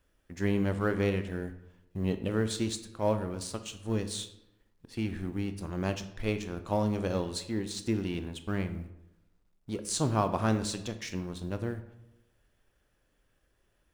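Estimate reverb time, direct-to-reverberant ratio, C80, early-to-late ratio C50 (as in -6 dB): 0.85 s, 9.0 dB, 14.0 dB, 12.0 dB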